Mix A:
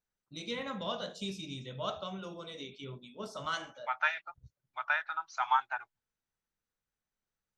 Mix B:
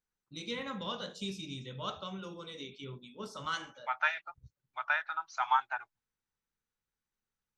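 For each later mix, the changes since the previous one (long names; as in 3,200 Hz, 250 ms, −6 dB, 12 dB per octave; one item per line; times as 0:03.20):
first voice: add parametric band 660 Hz −12 dB 0.26 octaves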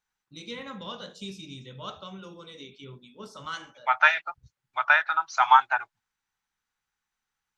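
second voice +11.0 dB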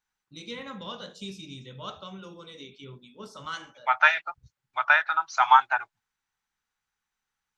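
nothing changed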